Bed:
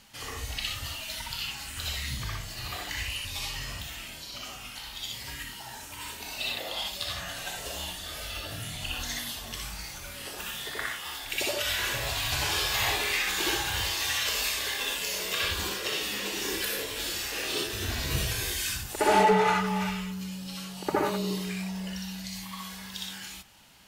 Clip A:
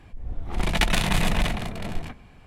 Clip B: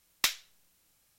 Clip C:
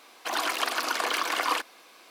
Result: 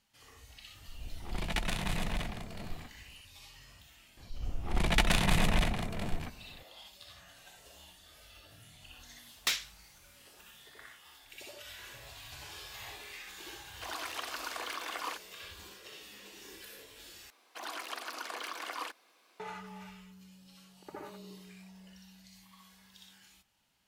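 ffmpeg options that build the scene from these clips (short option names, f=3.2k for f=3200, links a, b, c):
-filter_complex "[1:a]asplit=2[a][b];[3:a]asplit=2[c][d];[0:a]volume=-19dB[e];[a]acrusher=bits=10:mix=0:aa=0.000001[f];[2:a]asplit=2[g][h];[h]highpass=f=720:p=1,volume=20dB,asoftclip=type=tanh:threshold=-13.5dB[i];[g][i]amix=inputs=2:normalize=0,lowpass=f=6.7k:p=1,volume=-6dB[j];[e]asplit=2[k][l];[k]atrim=end=17.304[m];[d]atrim=end=2.1,asetpts=PTS-STARTPTS,volume=-13dB[n];[l]atrim=start=19.396[o];[f]atrim=end=2.46,asetpts=PTS-STARTPTS,volume=-11.5dB,afade=t=in:d=0.004:c=hsin,afade=t=out:st=2.456:d=0.004:c=hsin,adelay=750[p];[b]atrim=end=2.46,asetpts=PTS-STARTPTS,volume=-4.5dB,afade=t=in:d=0.004:c=hsin,afade=t=out:st=2.456:d=0.004:c=hsin,adelay=183897S[q];[j]atrim=end=1.18,asetpts=PTS-STARTPTS,volume=-6.5dB,afade=t=in:d=0.004:c=hsin,afade=t=out:st=1.176:d=0.004:c=hsin,adelay=9230[r];[c]atrim=end=2.1,asetpts=PTS-STARTPTS,volume=-12dB,afade=t=in:d=0.004:c=hsin,afade=t=out:st=2.096:d=0.004:c=hsin,adelay=13560[s];[m][n]acrossfade=d=0.004:c1=hsin:c2=hsin[t];[t][o]acrossfade=d=0.004:c1=hsin:c2=hsin[u];[u][p][q][r][s]amix=inputs=5:normalize=0"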